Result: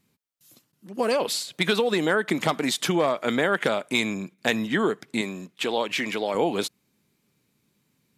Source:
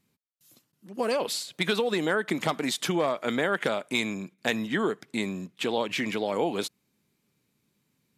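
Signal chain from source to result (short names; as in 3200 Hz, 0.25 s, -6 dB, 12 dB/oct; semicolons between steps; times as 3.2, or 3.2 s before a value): 5.21–6.35 low shelf 200 Hz -11 dB; gain +3.5 dB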